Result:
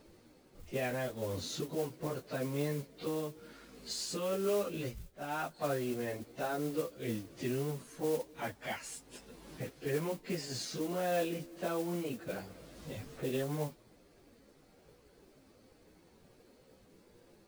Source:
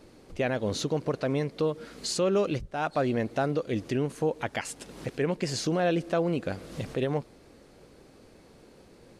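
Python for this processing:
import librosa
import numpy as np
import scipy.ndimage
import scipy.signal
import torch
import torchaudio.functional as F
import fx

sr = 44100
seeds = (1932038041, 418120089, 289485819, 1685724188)

y = fx.stretch_vocoder_free(x, sr, factor=1.9)
y = fx.mod_noise(y, sr, seeds[0], snr_db=16)
y = F.gain(torch.from_numpy(y), -5.5).numpy()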